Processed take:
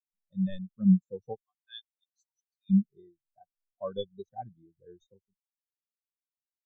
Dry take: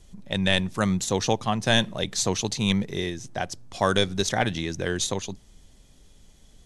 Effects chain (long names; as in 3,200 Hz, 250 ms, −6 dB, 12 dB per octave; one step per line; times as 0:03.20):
0:01.41–0:02.70: high-pass filter 1,400 Hz 12 dB per octave
every bin expanded away from the loudest bin 4 to 1
level −7.5 dB